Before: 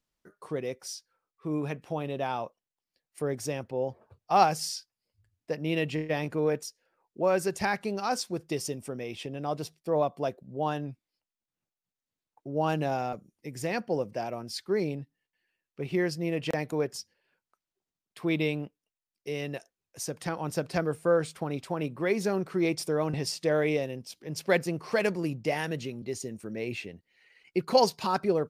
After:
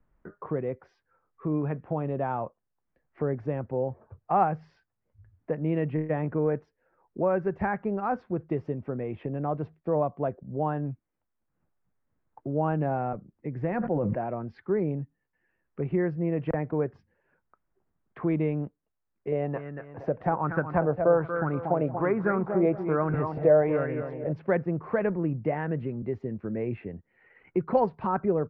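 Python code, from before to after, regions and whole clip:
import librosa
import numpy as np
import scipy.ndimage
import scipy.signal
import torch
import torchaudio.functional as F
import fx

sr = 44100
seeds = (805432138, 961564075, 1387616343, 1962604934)

y = fx.chain(x, sr, fx.notch(hz=440.0, q=9.7),
    fx.sustainer(db_per_s=40.0), at=(13.67, 14.19))
y = fx.chain(y, sr, fx.echo_feedback(ms=234, feedback_pct=30, wet_db=-9.0),
    fx.bell_lfo(hz=1.2, low_hz=590.0, high_hz=1500.0, db=13), at=(19.32, 24.33))
y = scipy.signal.sosfilt(scipy.signal.butter(4, 1700.0, 'lowpass', fs=sr, output='sos'), y)
y = fx.low_shelf(y, sr, hz=120.0, db=11.5)
y = fx.band_squash(y, sr, depth_pct=40)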